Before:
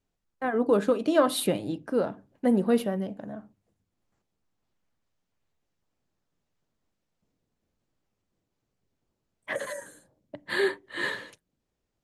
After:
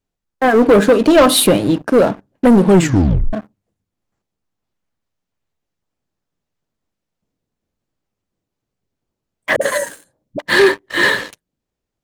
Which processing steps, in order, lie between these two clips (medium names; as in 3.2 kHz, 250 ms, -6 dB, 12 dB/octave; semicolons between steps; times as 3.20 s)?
waveshaping leveller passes 3; 2.61 s: tape stop 0.72 s; 9.56–10.42 s: phase dispersion highs, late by 52 ms, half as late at 310 Hz; trim +6.5 dB